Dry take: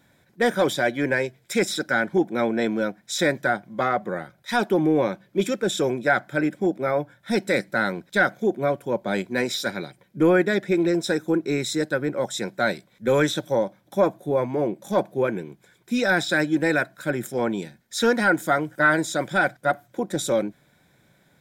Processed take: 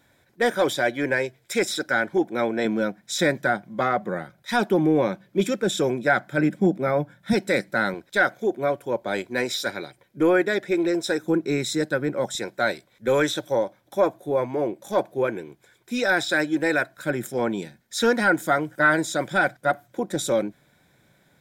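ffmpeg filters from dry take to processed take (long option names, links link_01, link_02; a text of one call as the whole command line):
ffmpeg -i in.wav -af "asetnsamples=nb_out_samples=441:pad=0,asendcmd='2.65 equalizer g 2;6.38 equalizer g 9;7.33 equalizer g -1;7.94 equalizer g -9.5;11.24 equalizer g 1;12.35 equalizer g -9.5;16.97 equalizer g -1.5',equalizer=frequency=180:width_type=o:width=0.75:gain=-7.5" out.wav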